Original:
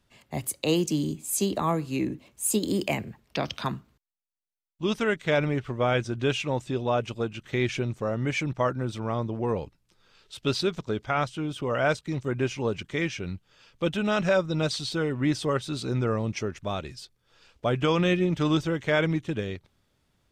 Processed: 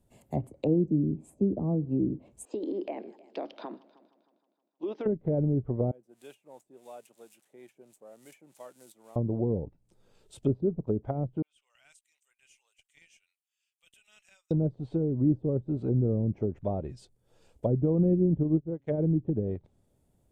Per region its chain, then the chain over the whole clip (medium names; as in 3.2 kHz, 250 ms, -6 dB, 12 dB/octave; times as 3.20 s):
2.45–5.06 s: elliptic band-pass 300–4800 Hz + compression, threshold -30 dBFS + multi-head delay 156 ms, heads first and second, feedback 43%, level -23.5 dB
5.91–9.16 s: zero-crossing glitches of -24.5 dBFS + high-pass 150 Hz 24 dB/octave + differentiator
11.42–14.51 s: ladder high-pass 2.4 kHz, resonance 45% + peaking EQ 3.8 kHz -12 dB 1.1 oct + valve stage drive 26 dB, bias 0.35
18.43–18.98 s: de-hum 138.2 Hz, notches 5 + upward expansion 2.5:1, over -37 dBFS
whole clip: low-pass that closes with the level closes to 370 Hz, closed at -24.5 dBFS; high-order bell 2.5 kHz -15 dB 2.8 oct; trim +2 dB